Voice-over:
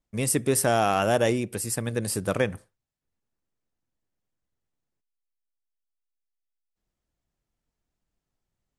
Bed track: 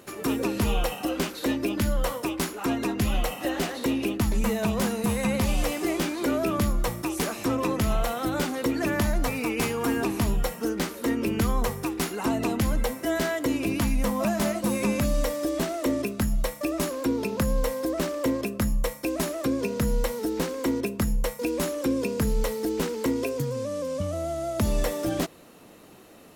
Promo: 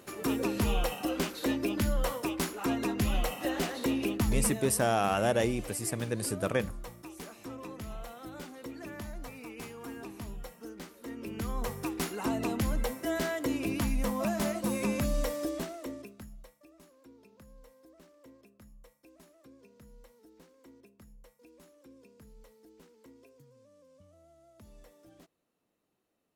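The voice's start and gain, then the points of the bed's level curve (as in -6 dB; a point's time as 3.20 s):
4.15 s, -5.0 dB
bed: 4.37 s -4 dB
4.78 s -17 dB
11.04 s -17 dB
11.83 s -5.5 dB
15.43 s -5.5 dB
16.66 s -30.5 dB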